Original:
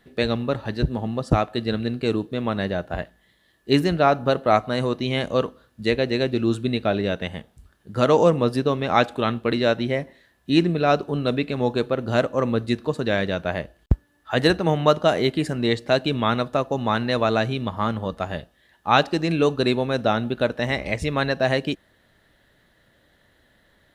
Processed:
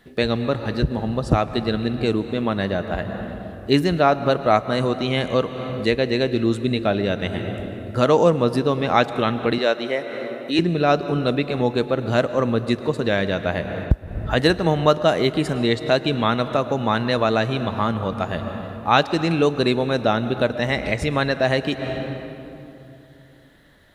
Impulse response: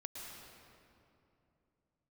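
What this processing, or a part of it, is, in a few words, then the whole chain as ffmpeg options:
ducked reverb: -filter_complex "[0:a]asplit=3[link_01][link_02][link_03];[1:a]atrim=start_sample=2205[link_04];[link_02][link_04]afir=irnorm=-1:irlink=0[link_05];[link_03]apad=whole_len=1056006[link_06];[link_05][link_06]sidechaincompress=threshold=-30dB:ratio=8:attack=43:release=248,volume=2dB[link_07];[link_01][link_07]amix=inputs=2:normalize=0,asettb=1/sr,asplit=3[link_08][link_09][link_10];[link_08]atrim=end=9.584[link_11];[link_09]atrim=start=9.58:end=10.59,asetpts=PTS-STARTPTS,afade=type=in:duration=0.004:curve=qsin,afade=type=out:start_time=1.006:duration=0.004:curve=qsin,highpass=350[link_12];[link_10]atrim=start=10.586[link_13];[link_11][link_12]acrossfade=duration=0.004:curve1=hsin:curve2=qsin[link_14];[link_14][link_13]acrossfade=duration=0.004:curve1=qsin:curve2=hsin"

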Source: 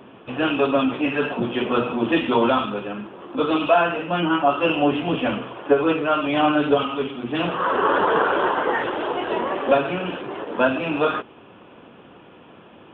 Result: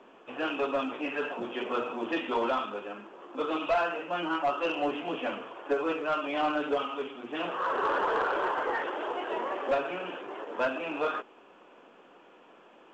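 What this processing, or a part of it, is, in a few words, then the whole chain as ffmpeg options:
telephone: -af "highpass=370,lowpass=3200,asoftclip=type=tanh:threshold=-12.5dB,volume=-7dB" -ar 16000 -c:a pcm_mulaw

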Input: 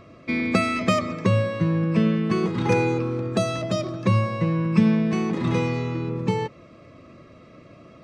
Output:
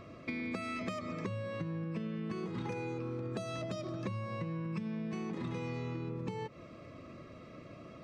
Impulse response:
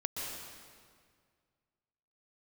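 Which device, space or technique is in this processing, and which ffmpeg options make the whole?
serial compression, peaks first: -af "acompressor=threshold=-29dB:ratio=4,acompressor=threshold=-34dB:ratio=2.5,volume=-3dB"

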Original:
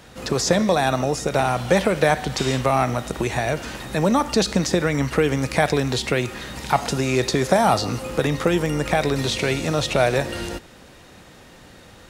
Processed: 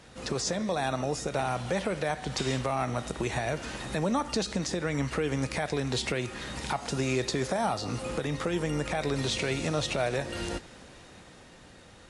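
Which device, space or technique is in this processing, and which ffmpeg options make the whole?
low-bitrate web radio: -af "dynaudnorm=framelen=320:gausssize=9:maxgain=7.5dB,alimiter=limit=-12dB:level=0:latency=1:release=385,volume=-6dB" -ar 24000 -c:a libmp3lame -b:a 48k

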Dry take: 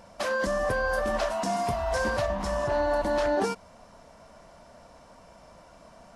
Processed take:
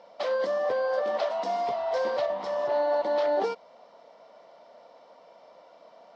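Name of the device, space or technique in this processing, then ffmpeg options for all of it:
phone earpiece: -af "highpass=480,equalizer=frequency=490:width_type=q:width=4:gain=5,equalizer=frequency=1100:width_type=q:width=4:gain=-5,equalizer=frequency=1600:width_type=q:width=4:gain=-10,equalizer=frequency=2600:width_type=q:width=4:gain=-7,lowpass=frequency=4300:width=0.5412,lowpass=frequency=4300:width=1.3066,volume=1.5dB"

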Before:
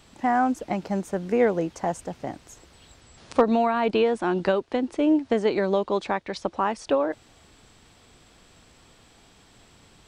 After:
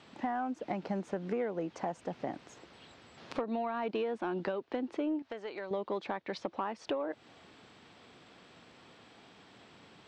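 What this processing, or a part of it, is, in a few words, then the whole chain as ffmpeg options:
AM radio: -filter_complex "[0:a]highpass=160,lowpass=3800,acompressor=threshold=-31dB:ratio=6,asoftclip=type=tanh:threshold=-21.5dB,asettb=1/sr,asplit=3[link_01][link_02][link_03];[link_01]atrim=end=5.224[link_04];[link_02]atrim=start=5.22:end=5.71,asetpts=PTS-STARTPTS,afade=type=in:duration=0.004:curve=qsin,afade=type=out:start_time=0.486:duration=0.004:curve=qsin,equalizer=frequency=200:width_type=o:width=2.5:gain=-13[link_05];[link_03]atrim=start=5.706[link_06];[link_04][link_05]acrossfade=duration=0.004:curve1=hsin:curve2=qsin[link_07];[link_07][link_06]acrossfade=duration=0.004:curve1=qsin:curve2=hsin"

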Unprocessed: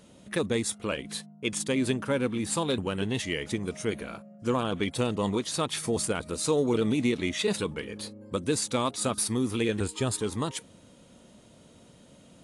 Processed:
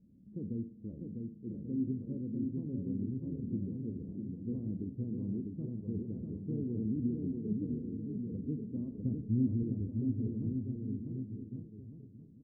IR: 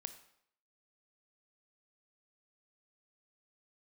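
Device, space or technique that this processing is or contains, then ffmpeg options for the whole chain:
next room: -filter_complex "[0:a]lowpass=frequency=280:width=0.5412,lowpass=frequency=280:width=1.3066[link_01];[1:a]atrim=start_sample=2205[link_02];[link_01][link_02]afir=irnorm=-1:irlink=0,asettb=1/sr,asplit=3[link_03][link_04][link_05];[link_03]atrim=end=8.924[link_06];[link_04]atrim=start=8.92:end=9.63,asetpts=PTS-STARTPTS,afade=type=in:duration=0.004:curve=qsin,afade=type=out:start_time=0.706:duration=0.004:curve=qsin,lowshelf=frequency=200:gain=11[link_07];[link_05]atrim=start=9.626[link_08];[link_06][link_07]acrossfade=duration=0.004:curve1=hsin:curve2=qsin[link_09];[link_09][link_08]acrossfade=duration=0.004:curve1=qsin:curve2=hsin,aecho=1:1:650|1138|1503|1777|1983:0.631|0.398|0.251|0.158|0.1,volume=-2dB"

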